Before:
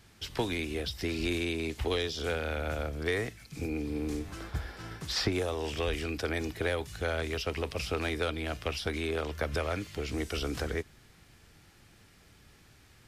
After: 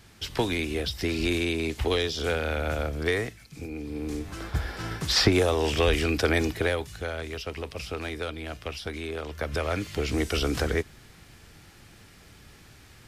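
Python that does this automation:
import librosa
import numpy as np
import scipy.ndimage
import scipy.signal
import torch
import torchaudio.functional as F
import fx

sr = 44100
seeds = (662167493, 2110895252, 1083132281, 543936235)

y = fx.gain(x, sr, db=fx.line((3.08, 5.0), (3.68, -3.0), (4.79, 9.0), (6.39, 9.0), (7.12, -1.5), (9.22, -1.5), (9.93, 7.0)))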